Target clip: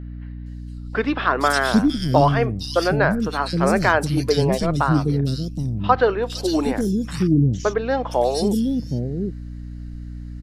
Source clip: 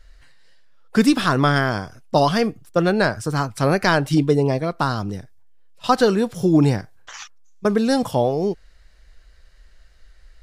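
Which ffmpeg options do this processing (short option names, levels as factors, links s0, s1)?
-filter_complex "[0:a]acrossover=split=330|3100[s0][s1][s2];[s2]adelay=460[s3];[s0]adelay=770[s4];[s4][s1][s3]amix=inputs=3:normalize=0,aeval=exprs='val(0)+0.0224*(sin(2*PI*60*n/s)+sin(2*PI*2*60*n/s)/2+sin(2*PI*3*60*n/s)/3+sin(2*PI*4*60*n/s)/4+sin(2*PI*5*60*n/s)/5)':c=same,volume=1.19"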